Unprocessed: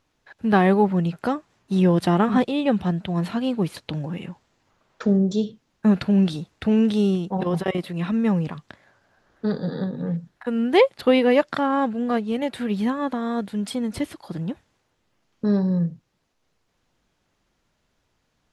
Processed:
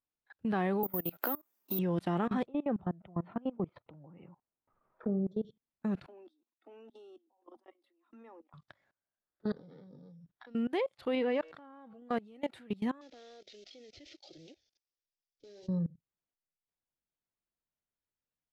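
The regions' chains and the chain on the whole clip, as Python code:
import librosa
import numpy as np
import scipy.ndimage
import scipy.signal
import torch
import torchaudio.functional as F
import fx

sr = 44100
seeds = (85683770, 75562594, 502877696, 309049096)

y = fx.chain(x, sr, fx.highpass(hz=230.0, slope=24),
    fx.resample_bad(factor=3, down='none', up='zero_stuff'),
    fx.band_squash(depth_pct=100), at=(0.83, 1.79))
y = fx.chain(y, sr, fx.lowpass(hz=1400.0, slope=12),
    fx.low_shelf(hz=230.0, db=-2.5),
    fx.band_squash(depth_pct=40), at=(2.46, 5.45))
y = fx.chain(y, sr, fx.high_shelf(hz=6000.0, db=-5.5),
    fx.level_steps(step_db=22),
    fx.cheby_ripple_highpass(hz=230.0, ripple_db=6), at=(6.06, 8.54))
y = fx.chain(y, sr, fx.sample_sort(block=8),
    fx.steep_lowpass(hz=4000.0, slope=36),
    fx.band_squash(depth_pct=40), at=(9.56, 10.55))
y = fx.chain(y, sr, fx.air_absorb(metres=60.0),
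    fx.comb_fb(f0_hz=160.0, decay_s=1.9, harmonics='all', damping=0.0, mix_pct=40),
    fx.pre_swell(db_per_s=21.0), at=(11.15, 12.02))
y = fx.chain(y, sr, fx.cvsd(bps=32000),
    fx.peak_eq(hz=5000.0, db=9.5, octaves=2.2),
    fx.fixed_phaser(hz=440.0, stages=4), at=(13.01, 15.68))
y = fx.noise_reduce_blind(y, sr, reduce_db=10)
y = fx.level_steps(y, sr, step_db=23)
y = fx.bass_treble(y, sr, bass_db=-1, treble_db=-4)
y = F.gain(torch.from_numpy(y), -7.0).numpy()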